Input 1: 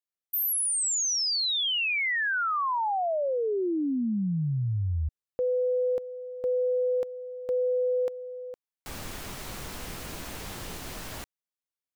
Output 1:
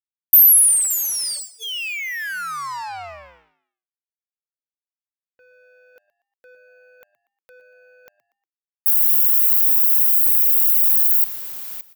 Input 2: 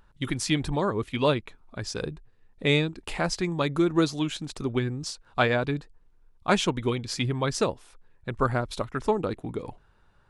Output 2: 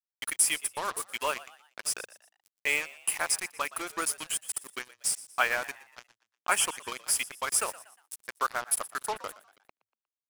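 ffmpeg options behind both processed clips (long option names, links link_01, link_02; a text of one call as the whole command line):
ffmpeg -i in.wav -filter_complex "[0:a]asuperstop=centerf=3900:order=8:qfactor=2.8,aemphasis=mode=production:type=50fm,afftdn=noise_reduction=25:noise_floor=-41,highpass=1200,asplit=2[link_01][link_02];[link_02]aecho=0:1:569:0.112[link_03];[link_01][link_03]amix=inputs=2:normalize=0,acrossover=split=5200[link_04][link_05];[link_05]acompressor=threshold=-27dB:ratio=4:attack=1:release=60[link_06];[link_04][link_06]amix=inputs=2:normalize=0,highshelf=frequency=2600:gain=-8.5,aexciter=amount=9.1:drive=5.7:freq=8800,acrusher=bits=5:mix=0:aa=0.5,asplit=2[link_07][link_08];[link_08]asplit=3[link_09][link_10][link_11];[link_09]adelay=119,afreqshift=100,volume=-18dB[link_12];[link_10]adelay=238,afreqshift=200,volume=-25.5dB[link_13];[link_11]adelay=357,afreqshift=300,volume=-33.1dB[link_14];[link_12][link_13][link_14]amix=inputs=3:normalize=0[link_15];[link_07][link_15]amix=inputs=2:normalize=0,volume=3.5dB" out.wav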